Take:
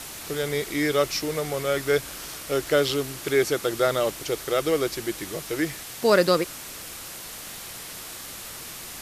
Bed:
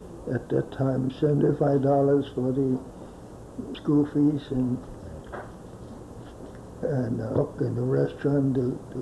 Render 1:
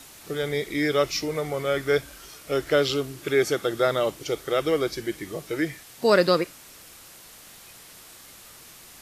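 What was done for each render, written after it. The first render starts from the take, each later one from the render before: noise print and reduce 9 dB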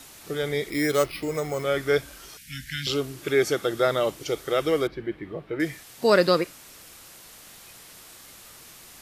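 0.7–1.64 careless resampling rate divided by 6×, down filtered, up hold; 2.37–2.87 Chebyshev band-stop 250–1600 Hz, order 5; 4.87–5.6 air absorption 480 m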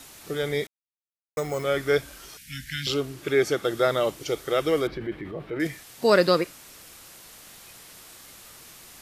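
0.67–1.37 mute; 2.94–3.65 high shelf 5300 Hz -4.5 dB; 4.77–5.67 transient shaper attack -2 dB, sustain +6 dB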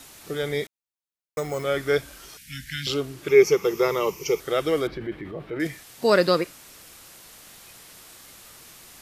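3.29–4.4 ripple EQ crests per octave 0.79, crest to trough 15 dB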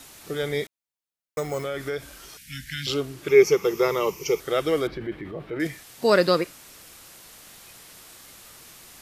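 1.61–2.88 compressor 4:1, threshold -26 dBFS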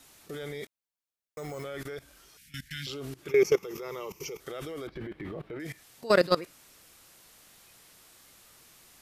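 transient shaper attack -5 dB, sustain +1 dB; level quantiser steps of 19 dB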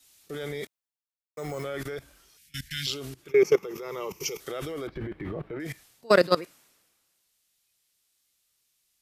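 vocal rider within 4 dB 0.5 s; three-band expander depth 70%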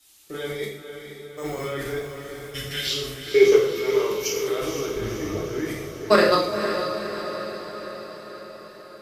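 diffused feedback echo 0.489 s, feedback 62%, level -7.5 dB; non-linear reverb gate 0.22 s falling, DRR -4 dB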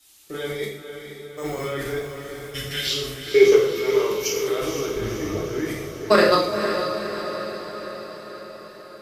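gain +1.5 dB; limiter -3 dBFS, peak gain reduction 2 dB

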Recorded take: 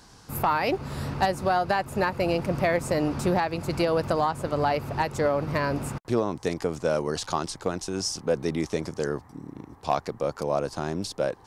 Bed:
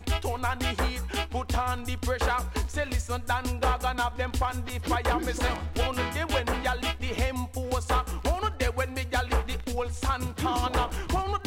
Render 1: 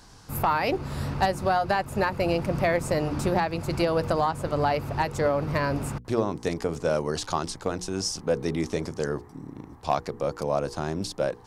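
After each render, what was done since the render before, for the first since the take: low shelf 81 Hz +6.5 dB; notches 60/120/180/240/300/360/420/480 Hz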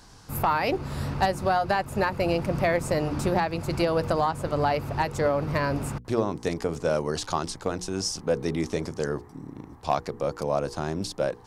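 nothing audible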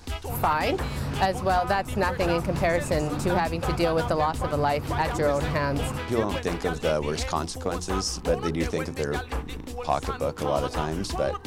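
add bed -5 dB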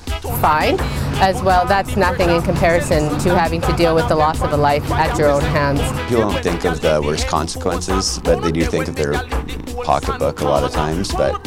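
gain +9.5 dB; limiter -2 dBFS, peak gain reduction 1 dB

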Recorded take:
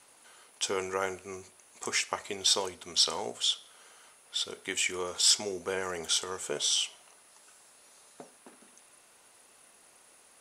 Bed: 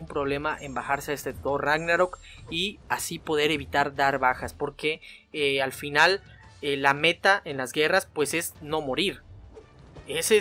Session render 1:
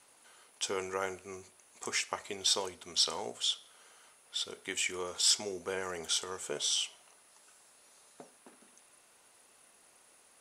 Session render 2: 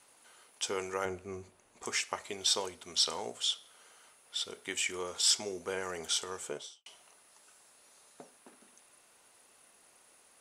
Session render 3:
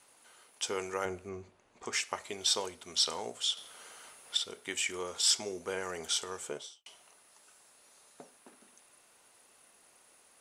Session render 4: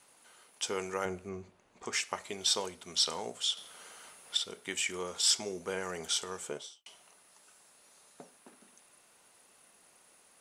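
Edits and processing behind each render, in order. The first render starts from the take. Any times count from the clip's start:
gain -3.5 dB
1.05–1.84 tilt -2.5 dB/oct; 6.4–6.86 studio fade out
1.29–1.93 air absorption 82 m; 3.57–4.37 gain +7.5 dB
bell 180 Hz +5.5 dB 0.44 oct

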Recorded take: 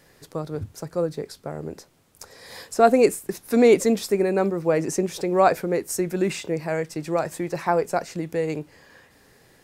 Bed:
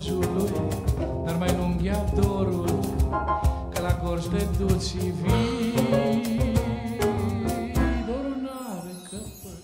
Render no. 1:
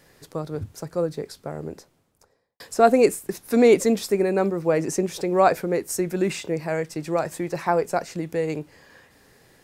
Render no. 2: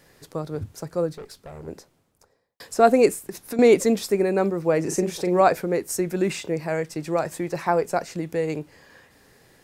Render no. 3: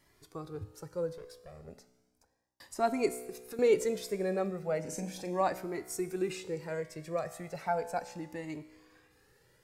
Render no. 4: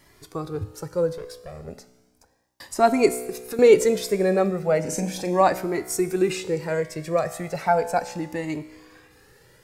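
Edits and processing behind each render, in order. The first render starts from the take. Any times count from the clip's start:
1.59–2.6 studio fade out
1.13–1.68 tube stage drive 34 dB, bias 0.5; 3.1–3.59 compressor, threshold -27 dBFS; 4.81–5.41 doubler 39 ms -7 dB
resonator 62 Hz, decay 1.4 s, harmonics all, mix 60%; cascading flanger rising 0.35 Hz
gain +11.5 dB

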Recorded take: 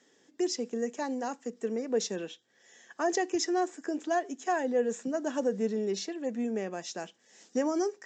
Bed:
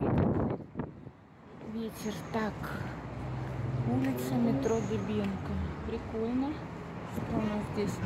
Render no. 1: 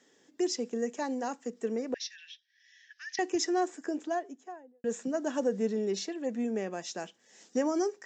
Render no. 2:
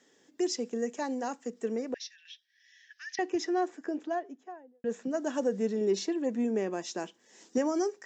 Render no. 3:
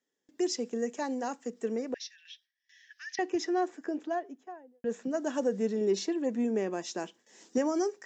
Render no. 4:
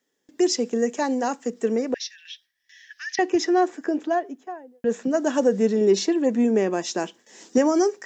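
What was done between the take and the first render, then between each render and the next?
1.94–3.19 Chebyshev band-pass 1700–5700 Hz, order 4; 3.75–4.84 studio fade out
1.84–2.25 fade out, to -10.5 dB; 3.15–5.11 air absorption 130 m; 5.81–7.58 small resonant body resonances 330/980 Hz, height 7 dB, ringing for 20 ms
gate with hold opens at -53 dBFS
gain +9.5 dB

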